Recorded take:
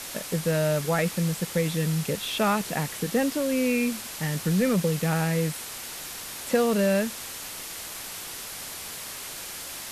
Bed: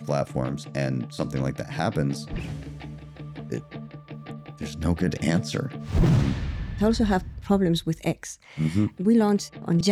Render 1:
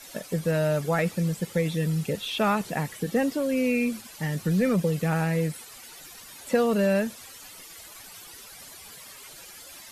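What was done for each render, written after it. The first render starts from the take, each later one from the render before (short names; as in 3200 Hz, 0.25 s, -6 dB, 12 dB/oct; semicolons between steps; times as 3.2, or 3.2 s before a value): denoiser 13 dB, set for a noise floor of -38 dBFS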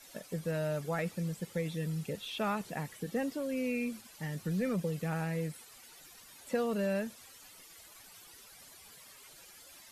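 gain -9.5 dB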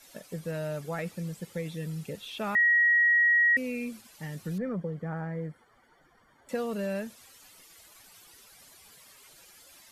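2.55–3.57 bleep 1900 Hz -19 dBFS; 4.58–6.49 polynomial smoothing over 41 samples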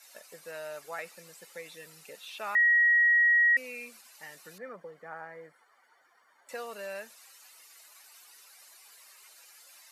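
HPF 750 Hz 12 dB/oct; notch 3300 Hz, Q 9.2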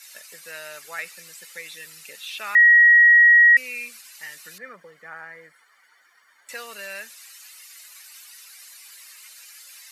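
EQ curve 190 Hz 0 dB, 750 Hz -3 dB, 1900 Hz +10 dB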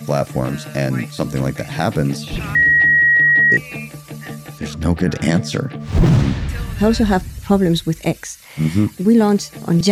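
add bed +7 dB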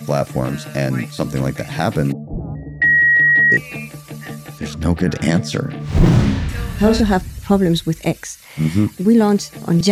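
2.12–2.82 Chebyshev low-pass 780 Hz, order 4; 5.63–7.01 flutter echo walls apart 5.8 m, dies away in 0.36 s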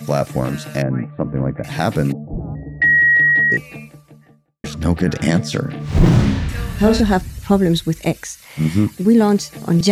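0.82–1.64 Gaussian blur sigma 5.4 samples; 3.13–4.64 studio fade out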